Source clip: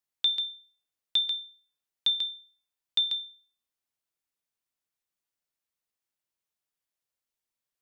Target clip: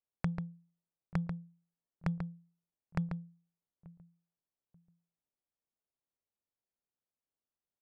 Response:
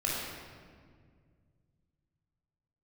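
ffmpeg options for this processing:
-filter_complex "[0:a]lowpass=f=2.9k:t=q:w=0.5098,lowpass=f=2.9k:t=q:w=0.6013,lowpass=f=2.9k:t=q:w=0.9,lowpass=f=2.9k:t=q:w=2.563,afreqshift=-3400,asplit=2[a][b];[b]adelay=885,lowpass=f=2k:p=1,volume=-20.5dB,asplit=2[c][d];[d]adelay=885,lowpass=f=2k:p=1,volume=0.26[e];[a][c][e]amix=inputs=3:normalize=0,adynamicsmooth=sensitivity=7.5:basefreq=550,volume=7.5dB"

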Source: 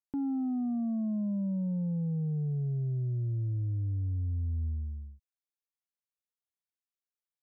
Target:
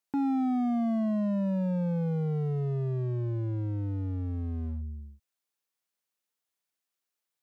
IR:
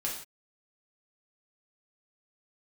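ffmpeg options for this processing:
-af "volume=32dB,asoftclip=hard,volume=-32dB,highpass=f=190:p=1,volume=8dB"

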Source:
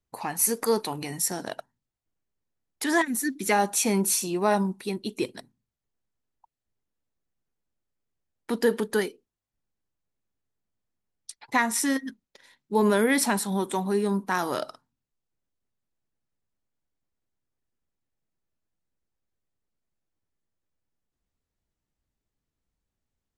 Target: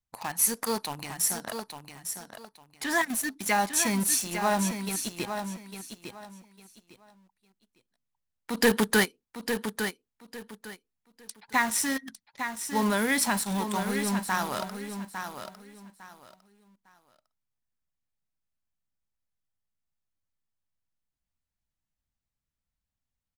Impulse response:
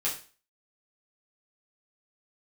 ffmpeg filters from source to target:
-filter_complex "[0:a]equalizer=f=390:t=o:w=1:g=-10.5,asplit=2[a][b];[b]acrusher=bits=4:mix=0:aa=0.000001,volume=-3dB[c];[a][c]amix=inputs=2:normalize=0,asettb=1/sr,asplit=3[d][e][f];[d]atrim=end=1.444[g];[e]atrim=start=1.44:end=2.91,asetpts=PTS-STARTPTS,afade=t=in:d=0.004:c=qsin,afade=t=out:st=1.466:d=0.004:c=qsin,highshelf=f=7.2k:g=-9.5[h];[f]atrim=start=2.906[i];[g][h]acrossfade=d=0.004:c1=hsin:c2=qsin[j];[j][i]acrossfade=d=0.004:c1=qsin:c2=hsin,asplit=3[k][l][m];[k]afade=t=out:st=8.56:d=0.02[n];[l]aeval=exprs='0.335*sin(PI/2*2*val(0)/0.335)':c=same,afade=t=in:st=8.56:d=0.02,afade=t=out:st=9.04:d=0.02[o];[m]afade=t=in:st=9.04:d=0.02[p];[n][o][p]amix=inputs=3:normalize=0,aecho=1:1:854|1708|2562:0.398|0.0955|0.0229,volume=-5dB"

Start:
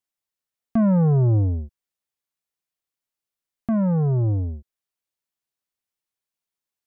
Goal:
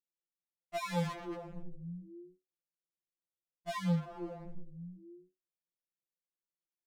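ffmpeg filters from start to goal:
-filter_complex "[0:a]equalizer=f=490:w=0.37:g=-3.5,asplit=6[a][b][c][d][e][f];[b]adelay=167,afreqshift=-91,volume=-13.5dB[g];[c]adelay=334,afreqshift=-182,volume=-19.2dB[h];[d]adelay=501,afreqshift=-273,volume=-24.9dB[i];[e]adelay=668,afreqshift=-364,volume=-30.5dB[j];[f]adelay=835,afreqshift=-455,volume=-36.2dB[k];[a][g][h][i][j][k]amix=inputs=6:normalize=0,acrossover=split=250[l][m];[m]acrusher=bits=3:mix=0:aa=0.5[n];[l][n]amix=inputs=2:normalize=0,equalizer=f=125:t=o:w=1:g=-11,equalizer=f=250:t=o:w=1:g=-6,equalizer=f=500:t=o:w=1:g=11,equalizer=f=1k:t=o:w=1:g=10,asplit=2[o][p];[p]highpass=f=720:p=1,volume=24dB,asoftclip=type=tanh:threshold=-12.5dB[q];[o][q]amix=inputs=2:normalize=0,lowpass=f=1.8k:p=1,volume=-6dB,asoftclip=type=hard:threshold=-32dB,afftfilt=real='re*2.83*eq(mod(b,8),0)':imag='im*2.83*eq(mod(b,8),0)':win_size=2048:overlap=0.75,volume=-1dB"

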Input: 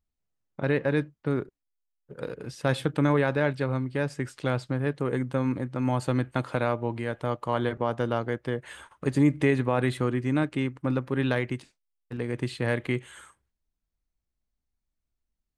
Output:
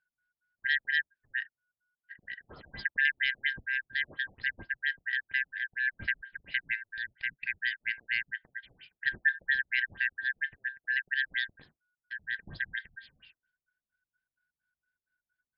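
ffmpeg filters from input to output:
-af "afftfilt=real='real(if(lt(b,272),68*(eq(floor(b/68),0)*3+eq(floor(b/68),1)*0+eq(floor(b/68),2)*1+eq(floor(b/68),3)*2)+mod(b,68),b),0)':imag='imag(if(lt(b,272),68*(eq(floor(b/68),0)*3+eq(floor(b/68),1)*0+eq(floor(b/68),2)*1+eq(floor(b/68),3)*2)+mod(b,68),b),0)':win_size=2048:overlap=0.75,bass=f=250:g=12,treble=f=4k:g=2,afftfilt=real='re*lt(b*sr/1024,730*pow(5400/730,0.5+0.5*sin(2*PI*4.3*pts/sr)))':imag='im*lt(b*sr/1024,730*pow(5400/730,0.5+0.5*sin(2*PI*4.3*pts/sr)))':win_size=1024:overlap=0.75,volume=-3.5dB"

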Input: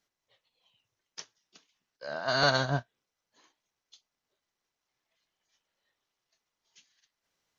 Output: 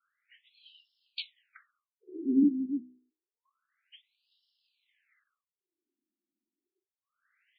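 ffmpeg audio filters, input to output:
-filter_complex "[0:a]asettb=1/sr,asplit=3[a][b][c];[a]atrim=end=2.074[d];[b]atrim=start=2.07:end=2.48,asetpts=PTS-STARTPTS,afade=t=in:d=0.004:c=qsin,afade=t=out:st=0.406:d=0.004:c=qsin,equalizer=f=200:t=o:w=2.8:g=13.5[e];[c]atrim=start=2.476[f];[d][e]acrossfade=d=0.004:c1=hsin:c2=qsin[g];[g][f]acrossfade=d=0.004:c1=qsin:c2=hsin,asplit=2[h][i];[i]asoftclip=type=tanh:threshold=-20.5dB,volume=-4dB[j];[h][j]amix=inputs=2:normalize=0,asuperstop=centerf=670:order=12:qfactor=0.76,equalizer=f=470:t=o:w=0.77:g=4,bandreject=f=62.81:t=h:w=4,bandreject=f=125.62:t=h:w=4,bandreject=f=188.43:t=h:w=4,bandreject=f=251.24:t=h:w=4,bandreject=f=314.05:t=h:w=4,bandreject=f=376.86:t=h:w=4,bandreject=f=439.67:t=h:w=4,bandreject=f=502.48:t=h:w=4,bandreject=f=565.29:t=h:w=4,bandreject=f=628.1:t=h:w=4,bandreject=f=690.91:t=h:w=4,bandreject=f=753.72:t=h:w=4,bandreject=f=816.53:t=h:w=4,bandreject=f=879.34:t=h:w=4,bandreject=f=942.15:t=h:w=4,bandreject=f=1.00496k:t=h:w=4,bandreject=f=1.06777k:t=h:w=4,bandreject=f=1.13058k:t=h:w=4,bandreject=f=1.19339k:t=h:w=4,bandreject=f=1.2562k:t=h:w=4,bandreject=f=1.31901k:t=h:w=4,bandreject=f=1.38182k:t=h:w=4,bandreject=f=1.44463k:t=h:w=4,acrossover=split=450|810[k][l][m];[l]aeval=exprs='(mod(100*val(0)+1,2)-1)/100':c=same[n];[m]acontrast=38[o];[k][n][o]amix=inputs=3:normalize=0,afftfilt=real='re*between(b*sr/1024,250*pow(3900/250,0.5+0.5*sin(2*PI*0.28*pts/sr))/1.41,250*pow(3900/250,0.5+0.5*sin(2*PI*0.28*pts/sr))*1.41)':imag='im*between(b*sr/1024,250*pow(3900/250,0.5+0.5*sin(2*PI*0.28*pts/sr))/1.41,250*pow(3900/250,0.5+0.5*sin(2*PI*0.28*pts/sr))*1.41)':win_size=1024:overlap=0.75,volume=4.5dB"

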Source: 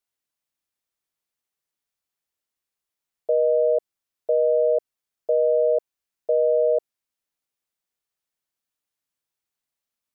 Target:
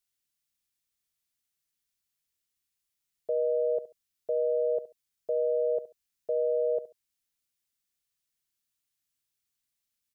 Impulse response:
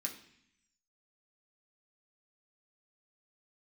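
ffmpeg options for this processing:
-filter_complex "[0:a]equalizer=f=670:w=0.5:g=-13,asplit=2[a][b];[b]aecho=0:1:69|138:0.178|0.0409[c];[a][c]amix=inputs=2:normalize=0,volume=3.5dB"

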